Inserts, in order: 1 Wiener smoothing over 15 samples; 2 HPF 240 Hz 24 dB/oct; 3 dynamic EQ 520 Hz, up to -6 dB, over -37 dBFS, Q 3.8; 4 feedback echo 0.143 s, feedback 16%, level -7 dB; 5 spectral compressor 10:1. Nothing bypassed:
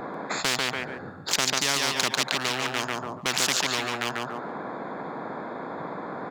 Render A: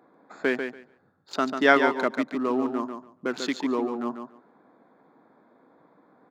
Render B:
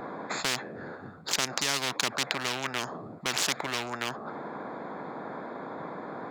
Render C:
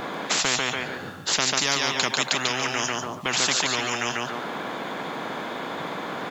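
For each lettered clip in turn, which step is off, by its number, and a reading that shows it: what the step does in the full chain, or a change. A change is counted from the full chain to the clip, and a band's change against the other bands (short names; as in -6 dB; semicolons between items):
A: 5, 8 kHz band -21.0 dB; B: 4, crest factor change +4.5 dB; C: 1, crest factor change -2.0 dB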